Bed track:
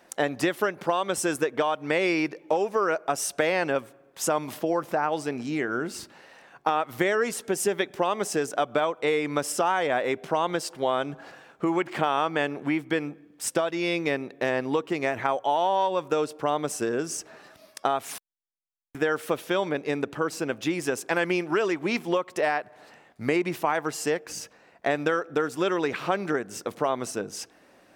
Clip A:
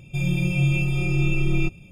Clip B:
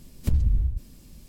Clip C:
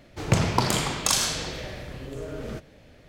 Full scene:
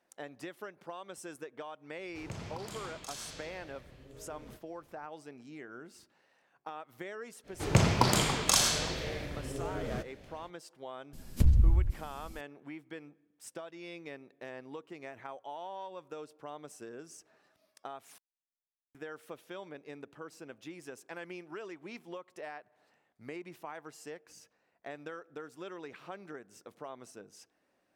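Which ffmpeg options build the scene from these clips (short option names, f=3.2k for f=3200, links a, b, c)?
-filter_complex "[3:a]asplit=2[a][b];[0:a]volume=-19dB[c];[a]alimiter=limit=-12.5dB:level=0:latency=1:release=188[d];[2:a]aresample=32000,aresample=44100[e];[d]atrim=end=3.08,asetpts=PTS-STARTPTS,volume=-17dB,afade=t=in:d=0.004:c=hsin,afade=t=out:st=3.076:d=0.004:c=hsin,adelay=1980[f];[b]atrim=end=3.08,asetpts=PTS-STARTPTS,volume=-2.5dB,afade=t=in:d=0.05,afade=t=out:st=3.03:d=0.05,adelay=7430[g];[e]atrim=end=1.28,asetpts=PTS-STARTPTS,volume=-1dB,afade=t=in:d=0.004:c=hsin,afade=t=out:st=1.276:d=0.004:c=hsin,adelay=11130[h];[c][f][g][h]amix=inputs=4:normalize=0"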